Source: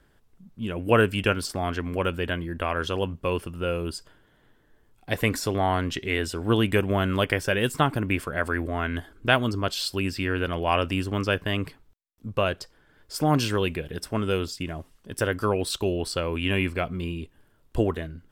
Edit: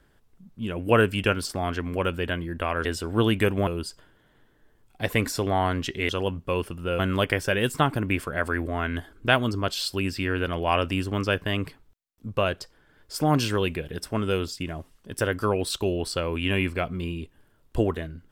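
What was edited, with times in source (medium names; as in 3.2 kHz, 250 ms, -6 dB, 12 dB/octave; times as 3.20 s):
2.85–3.75 s: swap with 6.17–6.99 s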